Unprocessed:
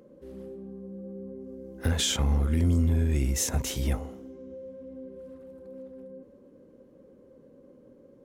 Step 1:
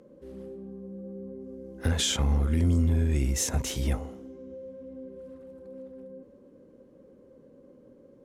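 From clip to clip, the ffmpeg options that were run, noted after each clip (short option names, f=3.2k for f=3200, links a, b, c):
-af "lowpass=12k"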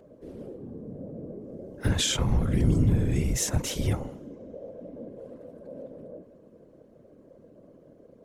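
-af "afftfilt=real='hypot(re,im)*cos(2*PI*random(0))':imag='hypot(re,im)*sin(2*PI*random(1))':win_size=512:overlap=0.75,volume=7dB"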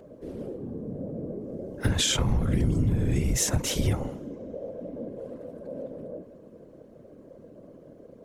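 -af "acompressor=threshold=-25dB:ratio=5,volume=4.5dB"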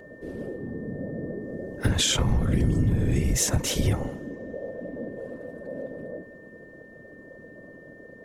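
-af "aeval=exprs='val(0)+0.00282*sin(2*PI*1800*n/s)':c=same,volume=1.5dB"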